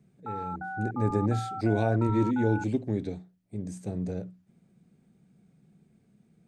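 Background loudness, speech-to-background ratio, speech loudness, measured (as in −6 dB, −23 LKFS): −37.5 LKFS, 7.5 dB, −30.0 LKFS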